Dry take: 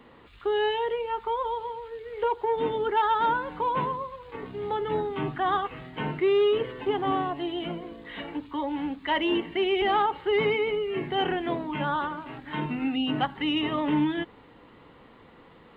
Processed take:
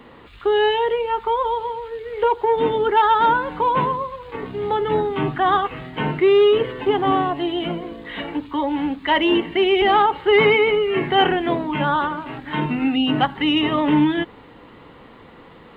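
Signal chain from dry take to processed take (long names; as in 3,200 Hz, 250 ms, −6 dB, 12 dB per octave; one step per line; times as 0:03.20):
0:10.28–0:11.28: parametric band 1,400 Hz +5 dB 2.2 octaves
level +8 dB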